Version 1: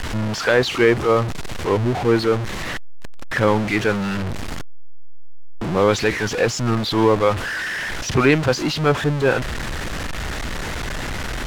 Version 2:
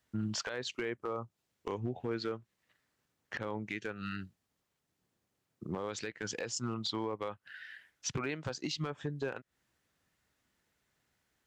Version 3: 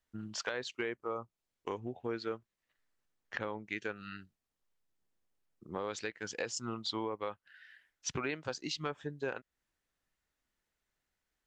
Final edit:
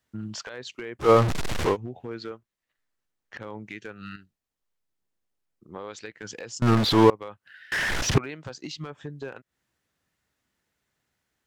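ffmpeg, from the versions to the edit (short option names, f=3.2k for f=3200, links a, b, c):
-filter_complex "[0:a]asplit=3[a][b][c];[2:a]asplit=2[d][e];[1:a]asplit=6[f][g][h][i][j][k];[f]atrim=end=1.09[l];[a]atrim=start=0.99:end=1.77[m];[g]atrim=start=1.67:end=2.312[n];[d]atrim=start=2.308:end=3.362[o];[h]atrim=start=3.358:end=4.162[p];[e]atrim=start=4.158:end=6.062[q];[i]atrim=start=6.058:end=6.622[r];[b]atrim=start=6.618:end=7.102[s];[j]atrim=start=7.098:end=7.722[t];[c]atrim=start=7.718:end=8.182[u];[k]atrim=start=8.178[v];[l][m]acrossfade=d=0.1:c1=tri:c2=tri[w];[w][n]acrossfade=d=0.1:c1=tri:c2=tri[x];[x][o]acrossfade=d=0.004:c1=hsin:c2=hsin[y];[y][p]acrossfade=d=0.004:c1=hsin:c2=hsin[z];[z][q]acrossfade=d=0.004:c1=hsin:c2=hsin[aa];[aa][r]acrossfade=d=0.004:c1=hsin:c2=hsin[ab];[ab][s]acrossfade=d=0.004:c1=hsin:c2=hsin[ac];[ac][t]acrossfade=d=0.004:c1=hsin:c2=hsin[ad];[ad][u]acrossfade=d=0.004:c1=hsin:c2=hsin[ae];[ae][v]acrossfade=d=0.004:c1=hsin:c2=hsin"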